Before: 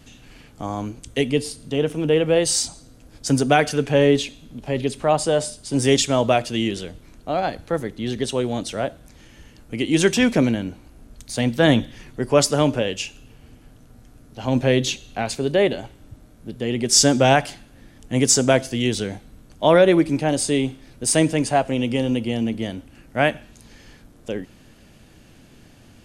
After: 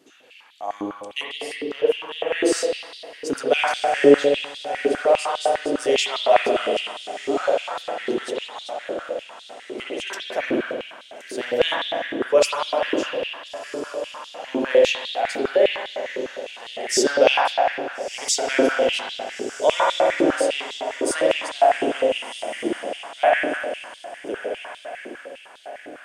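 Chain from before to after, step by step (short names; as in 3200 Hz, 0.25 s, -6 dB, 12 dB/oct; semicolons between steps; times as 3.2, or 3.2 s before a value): 8.25–10.3 chopper 3.3 Hz, depth 65%, duty 25%; diffused feedback echo 1.398 s, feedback 46%, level -11 dB; spring tank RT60 2 s, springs 49 ms, chirp 40 ms, DRR -4.5 dB; stepped high-pass 9.9 Hz 360–3700 Hz; gain -8.5 dB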